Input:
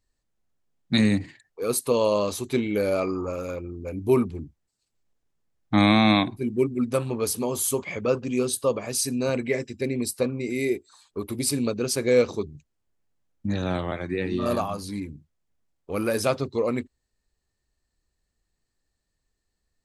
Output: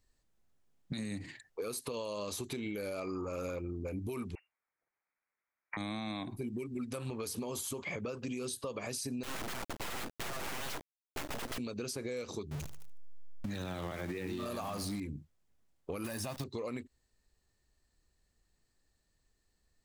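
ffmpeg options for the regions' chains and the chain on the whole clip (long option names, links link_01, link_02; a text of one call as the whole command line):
ffmpeg -i in.wav -filter_complex "[0:a]asettb=1/sr,asplit=3[link_01][link_02][link_03];[link_01]atrim=end=4.354[link_04];[link_02]atrim=start=4.35:end=5.77,asetpts=PTS-STARTPTS,afade=type=in:duration=0.004:curve=qsin,afade=type=out:start_time=1.416:duration=0.004:curve=qsin,highpass=frequency=840:width=0.5412,highpass=frequency=840:width=1.3066,lowpass=frequency=2600:width_type=q:width=0.5098,lowpass=frequency=2600:width_type=q:width=0.6013,lowpass=frequency=2600:width_type=q:width=0.9,lowpass=frequency=2600:width_type=q:width=2.563,afreqshift=-3100[link_05];[link_03]atrim=start=5.766[link_06];[link_04][link_05]acrossfade=duration=0.004:curve1=hsin:curve2=qsin[link_07];[link_07][link_06]acrossfade=duration=0.004:curve1=qsin:curve2=hsin,asettb=1/sr,asplit=3[link_08][link_09][link_10];[link_08]atrim=end=9.234[link_11];[link_09]atrim=start=9.23:end=11.58,asetpts=PTS-STARTPTS,afade=type=in:duration=0.004:curve=qsin,afade=type=out:start_time=2.346:duration=0.004:curve=qsin,lowpass=frequency=310:width_type=q:width=3.8,aeval=exprs='(mod(20*val(0)+1,2)-1)/20':channel_layout=same,acrusher=bits=4:dc=4:mix=0:aa=0.000001[link_12];[link_10]atrim=start=11.576[link_13];[link_11][link_12]acrossfade=duration=0.004:curve1=hsin:curve2=qsin[link_14];[link_14][link_13]acrossfade=duration=0.004:curve1=qsin:curve2=hsin,asettb=1/sr,asplit=3[link_15][link_16][link_17];[link_15]atrim=end=12.514[link_18];[link_16]atrim=start=12.51:end=15,asetpts=PTS-STARTPTS,afade=type=in:duration=0.004:curve=qsin,afade=type=out:start_time=2.486:duration=0.004:curve=qsin,aeval=exprs='val(0)+0.5*0.0141*sgn(val(0))':channel_layout=same,aecho=1:1:75|150|225|300:0.126|0.0554|0.0244|0.0107,atrim=end_sample=109809[link_19];[link_17]atrim=start=14.996[link_20];[link_18][link_19]acrossfade=duration=0.004:curve1=hsin:curve2=qsin[link_21];[link_21][link_20]acrossfade=duration=0.004:curve1=qsin:curve2=hsin,asettb=1/sr,asplit=3[link_22][link_23][link_24];[link_22]atrim=end=16.044[link_25];[link_23]atrim=start=16.04:end=16.44,asetpts=PTS-STARTPTS,afade=type=in:duration=0.004:curve=qsin,afade=type=out:start_time=0.396:duration=0.004:curve=qsin,aecho=1:1:1.1:0.73,atrim=end_sample=17640,acrusher=bits=7:dc=4:mix=0:aa=0.000001[link_26];[link_24]atrim=start=16.436[link_27];[link_25][link_26]acrossfade=duration=0.004:curve1=hsin:curve2=qsin[link_28];[link_28][link_27]acrossfade=duration=0.004:curve1=qsin:curve2=hsin,acrossover=split=1500|6200[link_29][link_30][link_31];[link_29]acompressor=threshold=-31dB:ratio=4[link_32];[link_30]acompressor=threshold=-41dB:ratio=4[link_33];[link_31]acompressor=threshold=-40dB:ratio=4[link_34];[link_32][link_33][link_34]amix=inputs=3:normalize=0,alimiter=level_in=3.5dB:limit=-24dB:level=0:latency=1:release=135,volume=-3.5dB,acompressor=threshold=-37dB:ratio=6,volume=2dB" out.wav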